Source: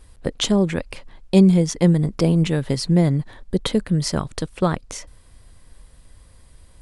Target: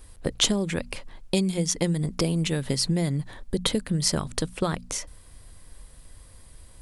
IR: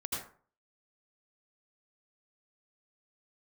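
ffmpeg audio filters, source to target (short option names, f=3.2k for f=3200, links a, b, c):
-filter_complex "[0:a]highshelf=f=9.7k:g=10,bandreject=f=60:t=h:w=6,bandreject=f=120:t=h:w=6,bandreject=f=180:t=h:w=6,bandreject=f=240:t=h:w=6,acrossover=split=2100[a][b];[a]acompressor=threshold=-22dB:ratio=6[c];[c][b]amix=inputs=2:normalize=0"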